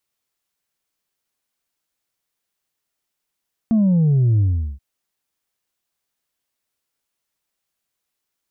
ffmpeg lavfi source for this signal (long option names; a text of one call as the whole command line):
ffmpeg -f lavfi -i "aevalsrc='0.224*clip((1.08-t)/0.39,0,1)*tanh(1.26*sin(2*PI*230*1.08/log(65/230)*(exp(log(65/230)*t/1.08)-1)))/tanh(1.26)':duration=1.08:sample_rate=44100" out.wav